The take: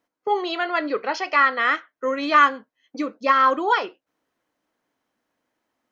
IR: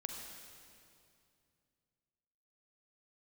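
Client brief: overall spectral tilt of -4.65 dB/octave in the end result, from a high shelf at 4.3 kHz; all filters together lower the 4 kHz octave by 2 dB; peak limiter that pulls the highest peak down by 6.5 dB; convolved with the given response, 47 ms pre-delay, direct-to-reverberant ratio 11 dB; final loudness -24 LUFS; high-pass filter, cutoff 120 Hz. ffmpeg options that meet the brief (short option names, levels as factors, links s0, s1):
-filter_complex "[0:a]highpass=120,equalizer=f=4000:t=o:g=-5,highshelf=f=4300:g=4.5,alimiter=limit=0.266:level=0:latency=1,asplit=2[s0][s1];[1:a]atrim=start_sample=2205,adelay=47[s2];[s1][s2]afir=irnorm=-1:irlink=0,volume=0.316[s3];[s0][s3]amix=inputs=2:normalize=0,volume=0.891"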